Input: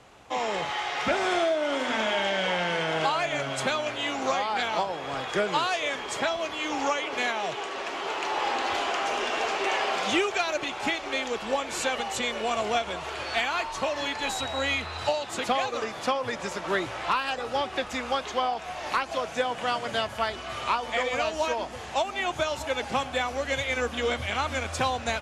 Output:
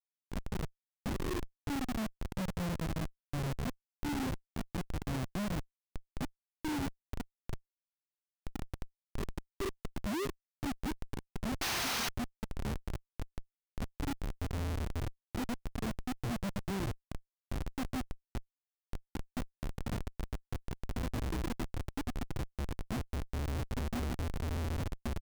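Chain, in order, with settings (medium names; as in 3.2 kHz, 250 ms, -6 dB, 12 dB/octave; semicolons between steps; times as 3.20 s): reverb removal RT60 1.9 s; 10.25–10.67 s: peaking EQ 180 Hz -10.5 dB 1.8 oct; LFO low-pass saw down 0.18 Hz 250–4000 Hz; tone controls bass +10 dB, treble -9 dB; saturation -17 dBFS, distortion -16 dB; inverse Chebyshev band-stop 850–3200 Hz, stop band 60 dB; on a send: frequency-shifting echo 149 ms, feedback 47%, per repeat +56 Hz, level -19.5 dB; 11.61–12.09 s: on the sum: painted sound noise 650–6600 Hz -29 dBFS; Schmitt trigger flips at -35 dBFS; trim +2.5 dB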